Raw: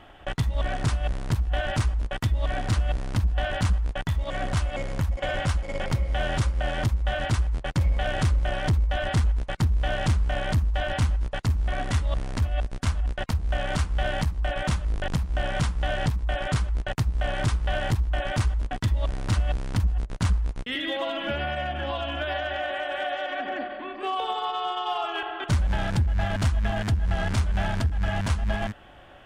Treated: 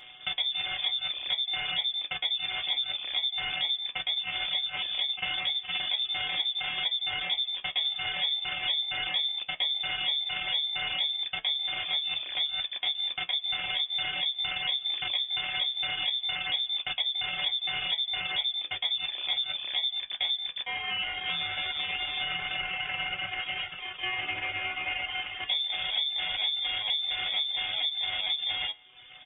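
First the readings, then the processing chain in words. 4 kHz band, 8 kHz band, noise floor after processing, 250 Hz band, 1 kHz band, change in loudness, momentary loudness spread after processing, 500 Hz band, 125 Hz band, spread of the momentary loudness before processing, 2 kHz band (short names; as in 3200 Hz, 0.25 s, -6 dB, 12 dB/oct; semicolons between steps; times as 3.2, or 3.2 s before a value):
+11.5 dB, under -40 dB, -46 dBFS, under -20 dB, -9.0 dB, -1.0 dB, 3 LU, -18.0 dB, -30.0 dB, 4 LU, 0.0 dB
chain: sample sorter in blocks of 32 samples; resonator 68 Hz, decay 0.29 s, harmonics all, mix 80%; buzz 120 Hz, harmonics 29, -62 dBFS -4 dB/oct; in parallel at -0.5 dB: limiter -27 dBFS, peak gain reduction 7.5 dB; on the sum: inverted band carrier 3500 Hz; on a send: echo 0.172 s -23 dB; on the sum: reverb removal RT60 0.75 s; notch comb 230 Hz; compressor 3:1, threshold -31 dBFS, peak gain reduction 7.5 dB; gain +3 dB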